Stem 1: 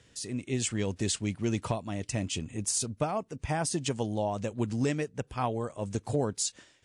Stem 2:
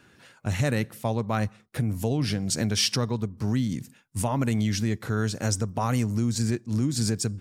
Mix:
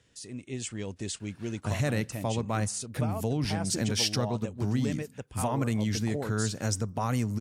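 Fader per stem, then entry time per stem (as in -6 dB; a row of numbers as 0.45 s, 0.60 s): -5.5 dB, -3.5 dB; 0.00 s, 1.20 s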